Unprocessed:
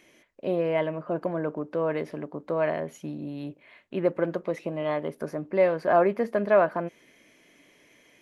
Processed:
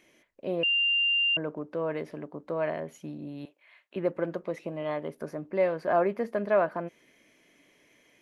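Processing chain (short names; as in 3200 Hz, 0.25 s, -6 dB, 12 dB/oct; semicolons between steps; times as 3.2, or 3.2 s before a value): 0.63–1.37 bleep 2790 Hz -18 dBFS; 3.45–3.96 HPF 850 Hz 12 dB/oct; gain -4 dB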